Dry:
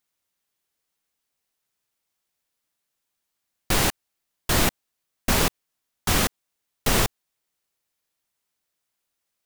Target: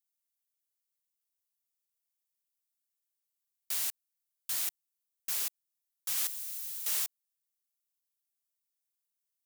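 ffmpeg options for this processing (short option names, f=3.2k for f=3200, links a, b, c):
-filter_complex "[0:a]asettb=1/sr,asplit=3[a][b][c];[a]atrim=end=6.174[d];[b]atrim=start=6.17:end=7.04,asetpts=PTS-STARTPTS,afade=t=in:d=0.004:c=qsin,afade=t=out:st=0.866:d=0.004:c=qsin,aeval=exprs='val(0)+0.5*0.0447*sgn(val(0))':c=same[e];[c]atrim=start=7.036[f];[d][e]acrossfade=d=0.004:c1=hsin:c2=qsin[g];[g][f]acrossfade=d=0.004:c1=qsin:c2=hsin,aderivative,volume=-9dB"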